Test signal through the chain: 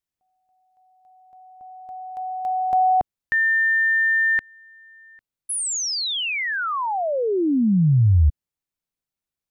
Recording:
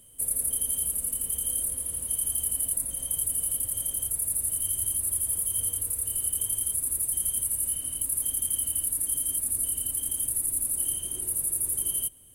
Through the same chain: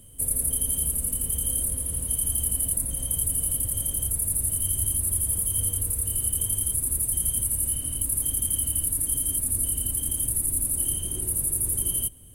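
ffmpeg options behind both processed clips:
ffmpeg -i in.wav -af "lowshelf=frequency=290:gain=12,volume=2dB" out.wav

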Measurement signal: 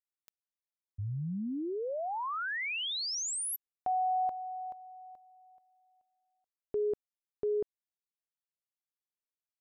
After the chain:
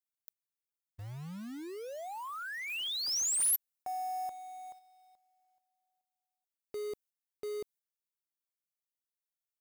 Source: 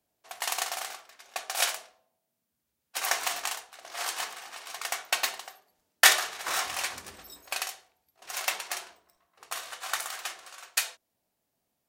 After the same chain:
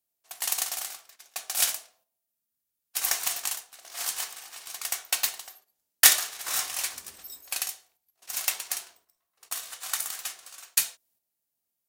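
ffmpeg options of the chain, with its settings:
ffmpeg -i in.wav -af "crystalizer=i=3.5:c=0,acrusher=bits=3:mode=log:mix=0:aa=0.000001,agate=range=-7dB:threshold=-42dB:ratio=16:release=201:detection=rms,volume=-8dB" out.wav

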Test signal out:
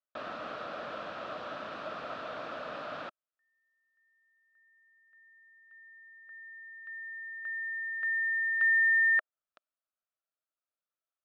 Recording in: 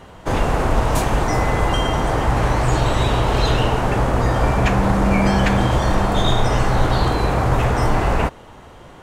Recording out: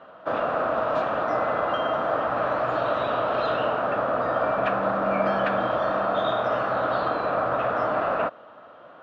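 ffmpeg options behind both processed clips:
ffmpeg -i in.wav -af "highpass=320,equalizer=frequency=390:width_type=q:width=4:gain=-8,equalizer=frequency=620:width_type=q:width=4:gain=9,equalizer=frequency=880:width_type=q:width=4:gain=-6,equalizer=frequency=1300:width_type=q:width=4:gain=9,equalizer=frequency=2100:width_type=q:width=4:gain=-10,equalizer=frequency=3000:width_type=q:width=4:gain=-4,lowpass=frequency=3200:width=0.5412,lowpass=frequency=3200:width=1.3066,volume=-4.5dB" out.wav

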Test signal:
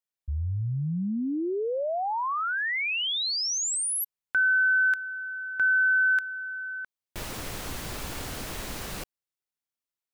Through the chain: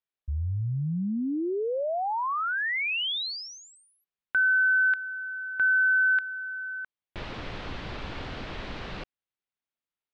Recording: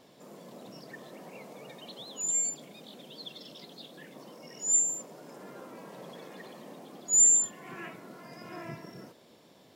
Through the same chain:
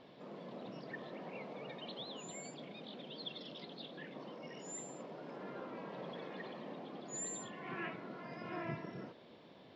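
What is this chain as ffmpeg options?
ffmpeg -i in.wav -af "lowpass=frequency=3900:width=0.5412,lowpass=frequency=3900:width=1.3066" out.wav

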